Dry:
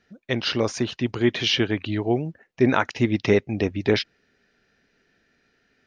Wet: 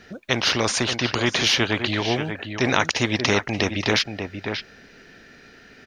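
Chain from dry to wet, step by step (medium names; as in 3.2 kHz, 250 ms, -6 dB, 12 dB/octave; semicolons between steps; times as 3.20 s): echo from a far wall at 100 m, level -13 dB; spectrum-flattening compressor 2:1; trim +3 dB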